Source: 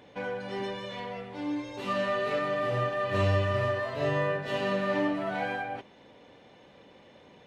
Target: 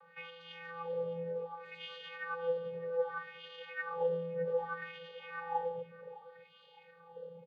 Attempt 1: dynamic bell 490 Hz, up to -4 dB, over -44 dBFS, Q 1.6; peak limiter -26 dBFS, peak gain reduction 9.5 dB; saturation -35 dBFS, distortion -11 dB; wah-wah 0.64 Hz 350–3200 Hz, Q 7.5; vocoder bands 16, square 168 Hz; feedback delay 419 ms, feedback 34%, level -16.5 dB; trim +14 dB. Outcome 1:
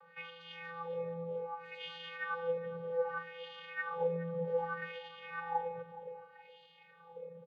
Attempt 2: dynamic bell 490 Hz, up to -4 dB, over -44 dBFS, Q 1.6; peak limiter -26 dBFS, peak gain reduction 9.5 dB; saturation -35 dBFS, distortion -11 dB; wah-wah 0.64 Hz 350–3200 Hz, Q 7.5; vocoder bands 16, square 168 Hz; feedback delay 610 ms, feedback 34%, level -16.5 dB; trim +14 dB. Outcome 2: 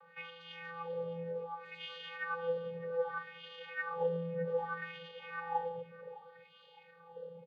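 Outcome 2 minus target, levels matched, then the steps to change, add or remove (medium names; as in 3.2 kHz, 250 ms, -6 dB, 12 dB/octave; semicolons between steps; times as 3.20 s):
125 Hz band +4.0 dB
change: dynamic bell 140 Hz, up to -4 dB, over -44 dBFS, Q 1.6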